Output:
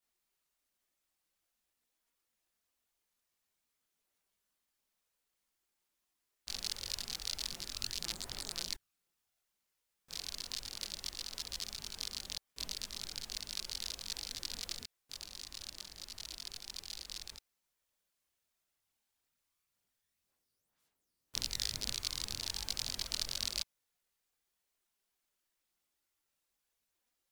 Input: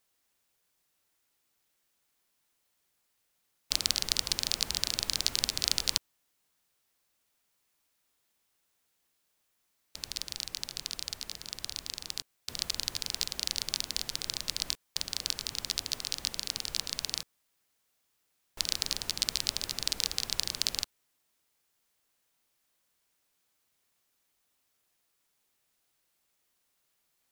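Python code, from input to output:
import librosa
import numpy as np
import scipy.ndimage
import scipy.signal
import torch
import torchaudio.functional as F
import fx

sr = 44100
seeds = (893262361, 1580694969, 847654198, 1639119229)

y = np.flip(x).copy()
y = fx.chorus_voices(y, sr, voices=6, hz=1.0, base_ms=22, depth_ms=3.0, mix_pct=60)
y = y * 10.0 ** (-5.0 / 20.0)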